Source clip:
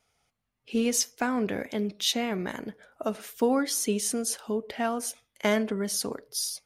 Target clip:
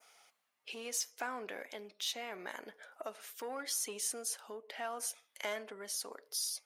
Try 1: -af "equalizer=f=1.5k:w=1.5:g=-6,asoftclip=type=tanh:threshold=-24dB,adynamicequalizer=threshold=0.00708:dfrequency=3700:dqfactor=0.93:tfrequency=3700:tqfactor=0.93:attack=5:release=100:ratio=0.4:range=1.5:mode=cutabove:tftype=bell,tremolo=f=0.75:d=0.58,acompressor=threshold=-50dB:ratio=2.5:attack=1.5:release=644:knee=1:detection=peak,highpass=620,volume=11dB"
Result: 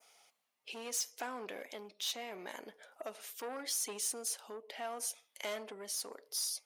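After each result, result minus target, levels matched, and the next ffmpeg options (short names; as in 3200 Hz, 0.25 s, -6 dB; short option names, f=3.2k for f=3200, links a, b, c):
soft clip: distortion +8 dB; 2000 Hz band -3.0 dB
-af "equalizer=f=1.5k:w=1.5:g=-6,asoftclip=type=tanh:threshold=-16.5dB,adynamicequalizer=threshold=0.00708:dfrequency=3700:dqfactor=0.93:tfrequency=3700:tqfactor=0.93:attack=5:release=100:ratio=0.4:range=1.5:mode=cutabove:tftype=bell,tremolo=f=0.75:d=0.58,acompressor=threshold=-50dB:ratio=2.5:attack=1.5:release=644:knee=1:detection=peak,highpass=620,volume=11dB"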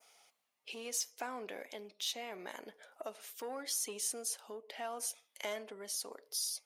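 2000 Hz band -3.5 dB
-af "asoftclip=type=tanh:threshold=-16.5dB,adynamicequalizer=threshold=0.00708:dfrequency=3700:dqfactor=0.93:tfrequency=3700:tqfactor=0.93:attack=5:release=100:ratio=0.4:range=1.5:mode=cutabove:tftype=bell,tremolo=f=0.75:d=0.58,acompressor=threshold=-50dB:ratio=2.5:attack=1.5:release=644:knee=1:detection=peak,highpass=620,volume=11dB"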